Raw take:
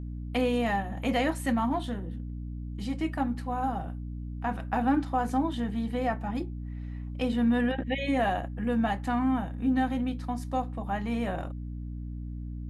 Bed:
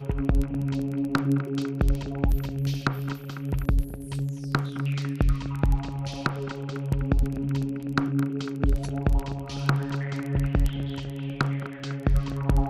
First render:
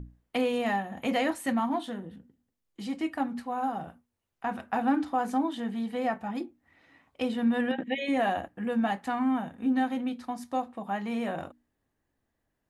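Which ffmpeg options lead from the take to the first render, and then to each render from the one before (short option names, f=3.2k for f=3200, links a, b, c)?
-af "bandreject=f=60:t=h:w=6,bandreject=f=120:t=h:w=6,bandreject=f=180:t=h:w=6,bandreject=f=240:t=h:w=6,bandreject=f=300:t=h:w=6"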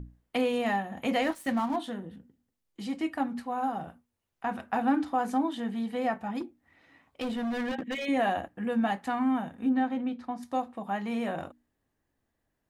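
-filter_complex "[0:a]asettb=1/sr,asplit=3[a][b][c];[a]atrim=end=1.224[d];[b]atrim=start=1.22:end=1.76,asetpts=PTS-STARTPTS,afade=t=in:d=0.004:c=qsin,afade=t=out:st=0.536:d=0.004:c=qsin,aeval=exprs='sgn(val(0))*max(abs(val(0))-0.00562,0)':c=same[e];[c]atrim=start=1.756[f];[d][e]acrossfade=d=0.004:c1=hsin:c2=qsin[g];[g][f]acrossfade=d=0.004:c1=qsin:c2=hsin,asplit=3[h][i][j];[h]afade=t=out:st=6.39:d=0.02[k];[i]asoftclip=type=hard:threshold=-29dB,afade=t=in:st=6.39:d=0.02,afade=t=out:st=8.05:d=0.02[l];[j]afade=t=in:st=8.05:d=0.02[m];[k][l][m]amix=inputs=3:normalize=0,asettb=1/sr,asplit=3[n][o][p];[n]atrim=end=9.694[q];[o]atrim=start=9.69:end=10.43,asetpts=PTS-STARTPTS,afade=t=in:d=0.004:c=qsin,afade=t=out:st=0.736:d=0.004:c=qsin,aemphasis=mode=reproduction:type=75kf[r];[p]atrim=start=10.426[s];[q][r]acrossfade=d=0.004:c1=hsin:c2=qsin[t];[t][s]acrossfade=d=0.004:c1=qsin:c2=hsin"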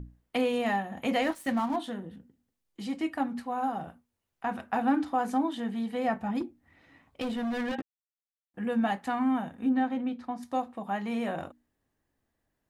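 -filter_complex "[0:a]asettb=1/sr,asplit=3[a][b][c];[a]atrim=end=6.084[d];[b]atrim=start=6.08:end=7.22,asetpts=PTS-STARTPTS,afade=t=in:d=0.004:c=qsin,afade=t=out:st=1.136:d=0.004:c=qsin,lowshelf=f=220:g=8[e];[c]atrim=start=7.216[f];[d][e]acrossfade=d=0.004:c1=hsin:c2=qsin[g];[g][f]acrossfade=d=0.004:c1=qsin:c2=hsin,asplit=3[h][i][j];[h]atrim=end=7.82,asetpts=PTS-STARTPTS,afade=t=out:st=7.816:d=0.004:c=hsin[k];[i]atrim=start=7.82:end=8.54,asetpts=PTS-STARTPTS,volume=0[l];[j]atrim=start=8.54,asetpts=PTS-STARTPTS,afade=t=in:d=0.004:c=hsin[m];[k][l][m]concat=n=3:v=0:a=1"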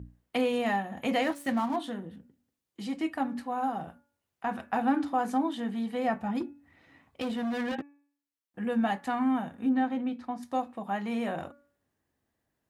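-af "highpass=59,bandreject=f=285.4:t=h:w=4,bandreject=f=570.8:t=h:w=4,bandreject=f=856.2:t=h:w=4,bandreject=f=1.1416k:t=h:w=4,bandreject=f=1.427k:t=h:w=4,bandreject=f=1.7124k:t=h:w=4,bandreject=f=1.9978k:t=h:w=4,bandreject=f=2.2832k:t=h:w=4,bandreject=f=2.5686k:t=h:w=4"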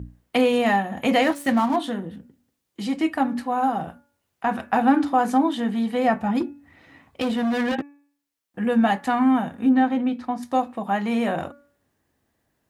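-af "volume=8.5dB"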